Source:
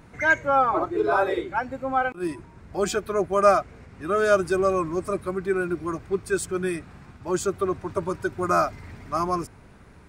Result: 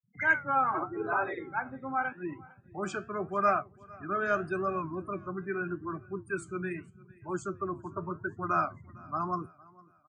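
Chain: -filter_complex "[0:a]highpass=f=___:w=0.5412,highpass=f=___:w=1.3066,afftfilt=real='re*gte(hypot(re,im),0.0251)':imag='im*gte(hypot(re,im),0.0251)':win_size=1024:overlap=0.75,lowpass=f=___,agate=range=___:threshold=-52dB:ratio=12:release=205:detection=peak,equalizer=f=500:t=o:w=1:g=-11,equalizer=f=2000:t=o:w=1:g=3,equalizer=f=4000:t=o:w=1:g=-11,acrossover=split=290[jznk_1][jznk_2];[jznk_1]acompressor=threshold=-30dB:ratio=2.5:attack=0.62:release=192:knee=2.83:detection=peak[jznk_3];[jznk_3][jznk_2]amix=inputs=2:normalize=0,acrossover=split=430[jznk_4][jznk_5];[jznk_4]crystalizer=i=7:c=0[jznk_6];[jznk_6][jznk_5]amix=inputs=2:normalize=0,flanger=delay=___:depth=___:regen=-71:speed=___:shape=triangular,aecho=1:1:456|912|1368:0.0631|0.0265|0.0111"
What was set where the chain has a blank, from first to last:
98, 98, 5100, -9dB, 6.8, 9.5, 0.83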